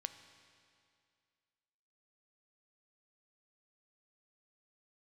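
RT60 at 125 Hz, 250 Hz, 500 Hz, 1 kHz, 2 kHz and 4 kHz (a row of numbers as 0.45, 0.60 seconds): 2.3, 2.3, 2.3, 2.3, 2.2, 2.2 seconds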